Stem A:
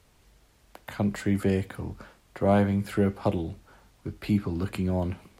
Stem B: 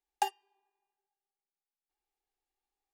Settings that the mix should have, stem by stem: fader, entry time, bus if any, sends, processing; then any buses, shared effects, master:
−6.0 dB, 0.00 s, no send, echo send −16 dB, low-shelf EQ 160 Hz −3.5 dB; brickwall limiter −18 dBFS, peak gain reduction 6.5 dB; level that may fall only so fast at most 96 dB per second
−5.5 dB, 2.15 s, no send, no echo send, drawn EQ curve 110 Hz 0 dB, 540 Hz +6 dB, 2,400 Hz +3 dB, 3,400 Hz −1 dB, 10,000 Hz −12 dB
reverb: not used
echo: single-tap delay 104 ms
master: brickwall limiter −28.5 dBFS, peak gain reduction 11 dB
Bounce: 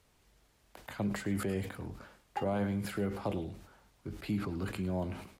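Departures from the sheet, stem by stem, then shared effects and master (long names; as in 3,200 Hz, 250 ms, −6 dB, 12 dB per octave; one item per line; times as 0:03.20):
stem B −5.5 dB → −12.5 dB
master: missing brickwall limiter −28.5 dBFS, peak gain reduction 11 dB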